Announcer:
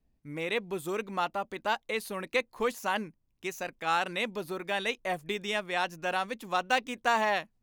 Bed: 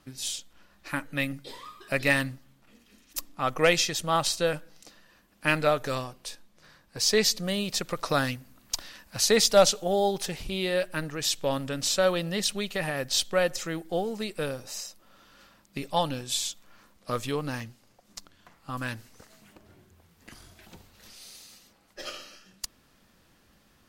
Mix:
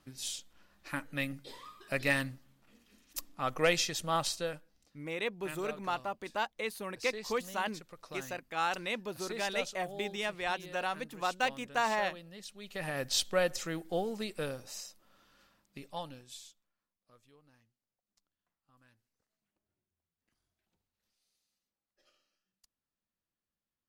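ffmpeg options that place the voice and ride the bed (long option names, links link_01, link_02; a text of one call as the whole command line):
ffmpeg -i stem1.wav -i stem2.wav -filter_complex "[0:a]adelay=4700,volume=-4dB[link_01];[1:a]volume=9.5dB,afade=type=out:start_time=4.21:duration=0.53:silence=0.199526,afade=type=in:start_time=12.58:duration=0.4:silence=0.16788,afade=type=out:start_time=14.12:duration=2.61:silence=0.0354813[link_02];[link_01][link_02]amix=inputs=2:normalize=0" out.wav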